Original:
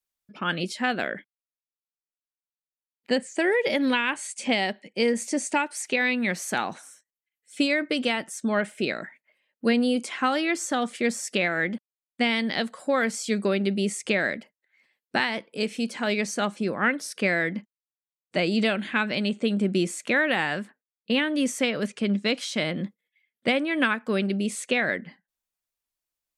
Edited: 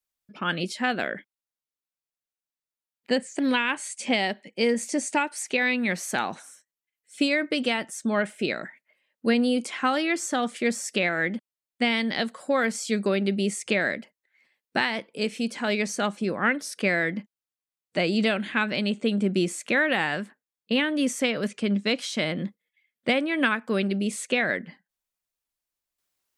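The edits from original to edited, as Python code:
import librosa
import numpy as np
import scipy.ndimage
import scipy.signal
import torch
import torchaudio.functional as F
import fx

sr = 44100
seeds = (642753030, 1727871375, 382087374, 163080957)

y = fx.edit(x, sr, fx.cut(start_s=3.39, length_s=0.39), tone=tone)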